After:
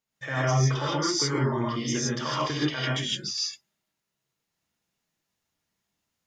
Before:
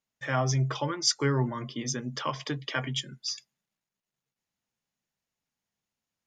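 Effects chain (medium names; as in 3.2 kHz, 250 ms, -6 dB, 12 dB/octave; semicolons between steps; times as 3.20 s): peak limiter -22 dBFS, peak gain reduction 10.5 dB; gated-style reverb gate 180 ms rising, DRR -6 dB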